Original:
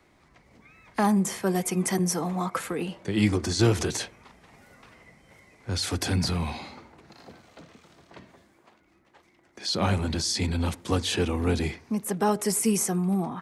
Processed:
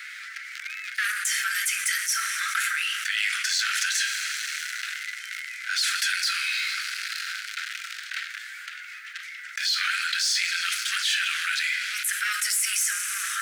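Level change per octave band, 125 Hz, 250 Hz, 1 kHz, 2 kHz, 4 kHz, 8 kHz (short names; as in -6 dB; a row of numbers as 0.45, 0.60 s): under -40 dB, under -40 dB, -3.0 dB, +13.5 dB, +7.5 dB, +5.5 dB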